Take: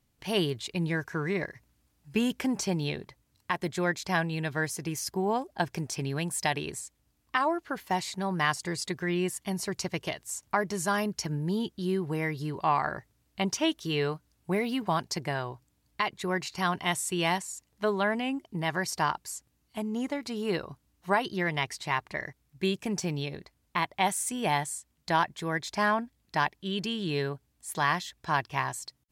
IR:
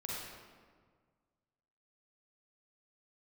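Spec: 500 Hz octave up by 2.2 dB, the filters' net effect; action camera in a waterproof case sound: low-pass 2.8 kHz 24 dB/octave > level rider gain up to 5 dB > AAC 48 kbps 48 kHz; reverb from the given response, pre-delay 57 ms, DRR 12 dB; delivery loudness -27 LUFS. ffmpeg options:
-filter_complex "[0:a]equalizer=f=500:t=o:g=3,asplit=2[s0][s1];[1:a]atrim=start_sample=2205,adelay=57[s2];[s1][s2]afir=irnorm=-1:irlink=0,volume=0.211[s3];[s0][s3]amix=inputs=2:normalize=0,lowpass=f=2800:w=0.5412,lowpass=f=2800:w=1.3066,dynaudnorm=m=1.78" -ar 48000 -c:a aac -b:a 48k

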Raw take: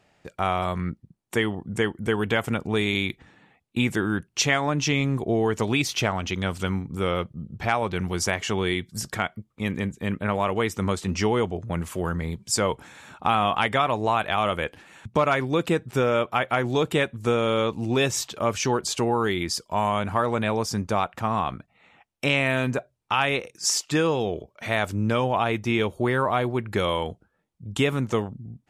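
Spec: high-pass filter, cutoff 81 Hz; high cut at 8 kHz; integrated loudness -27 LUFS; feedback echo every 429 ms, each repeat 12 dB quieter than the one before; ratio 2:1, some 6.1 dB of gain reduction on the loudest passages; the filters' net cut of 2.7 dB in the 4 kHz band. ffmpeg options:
-af "highpass=81,lowpass=8000,equalizer=f=4000:t=o:g=-3.5,acompressor=threshold=0.0355:ratio=2,aecho=1:1:429|858|1287:0.251|0.0628|0.0157,volume=1.5"

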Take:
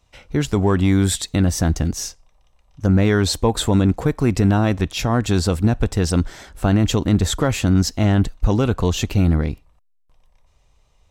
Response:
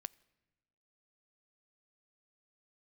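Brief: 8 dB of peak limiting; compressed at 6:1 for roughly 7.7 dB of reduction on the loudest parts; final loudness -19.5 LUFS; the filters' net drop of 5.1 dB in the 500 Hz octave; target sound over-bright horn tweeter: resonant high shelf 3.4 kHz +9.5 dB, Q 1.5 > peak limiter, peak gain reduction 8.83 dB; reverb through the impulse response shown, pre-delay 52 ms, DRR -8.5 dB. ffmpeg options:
-filter_complex "[0:a]equalizer=f=500:t=o:g=-6.5,acompressor=threshold=0.1:ratio=6,alimiter=limit=0.126:level=0:latency=1,asplit=2[s0][s1];[1:a]atrim=start_sample=2205,adelay=52[s2];[s1][s2]afir=irnorm=-1:irlink=0,volume=4.47[s3];[s0][s3]amix=inputs=2:normalize=0,highshelf=f=3400:t=q:w=1.5:g=9.5,volume=0.794,alimiter=limit=0.376:level=0:latency=1"

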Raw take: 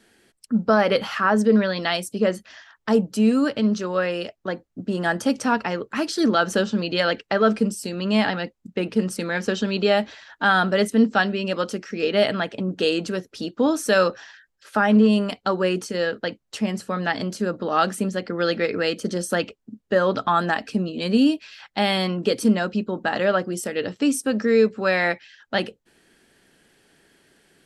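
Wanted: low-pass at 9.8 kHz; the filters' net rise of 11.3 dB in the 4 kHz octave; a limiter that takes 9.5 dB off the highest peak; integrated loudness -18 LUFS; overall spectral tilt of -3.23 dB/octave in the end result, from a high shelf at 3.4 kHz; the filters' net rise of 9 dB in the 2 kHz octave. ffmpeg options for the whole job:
-af "lowpass=9800,equalizer=f=2000:t=o:g=8,highshelf=f=3400:g=8.5,equalizer=f=4000:t=o:g=6,volume=1.41,alimiter=limit=0.531:level=0:latency=1"

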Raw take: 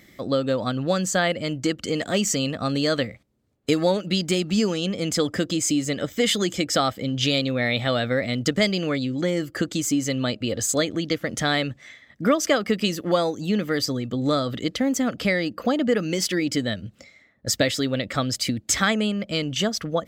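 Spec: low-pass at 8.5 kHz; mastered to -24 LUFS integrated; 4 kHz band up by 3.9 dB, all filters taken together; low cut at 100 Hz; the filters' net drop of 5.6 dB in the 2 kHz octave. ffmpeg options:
-af "highpass=100,lowpass=8500,equalizer=f=2000:t=o:g=-9,equalizer=f=4000:t=o:g=8,volume=0.944"

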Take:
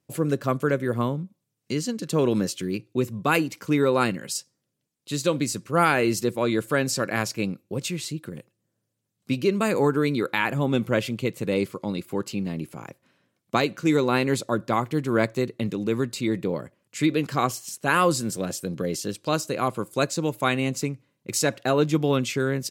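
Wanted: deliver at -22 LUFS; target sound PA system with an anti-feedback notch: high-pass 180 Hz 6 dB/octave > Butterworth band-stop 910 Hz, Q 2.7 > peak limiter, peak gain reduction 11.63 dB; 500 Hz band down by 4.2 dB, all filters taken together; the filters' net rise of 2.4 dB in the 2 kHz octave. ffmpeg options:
-af "highpass=f=180:p=1,asuperstop=centerf=910:order=8:qfactor=2.7,equalizer=f=500:t=o:g=-4.5,equalizer=f=2000:t=o:g=3.5,volume=2.82,alimiter=limit=0.316:level=0:latency=1"

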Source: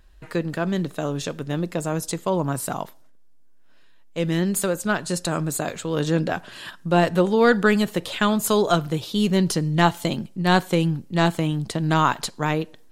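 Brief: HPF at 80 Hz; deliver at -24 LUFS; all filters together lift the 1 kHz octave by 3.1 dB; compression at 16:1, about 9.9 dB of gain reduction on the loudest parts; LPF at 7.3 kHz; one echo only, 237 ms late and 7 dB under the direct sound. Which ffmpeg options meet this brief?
-af "highpass=80,lowpass=7300,equalizer=f=1000:t=o:g=4,acompressor=threshold=0.112:ratio=16,aecho=1:1:237:0.447,volume=1.26"

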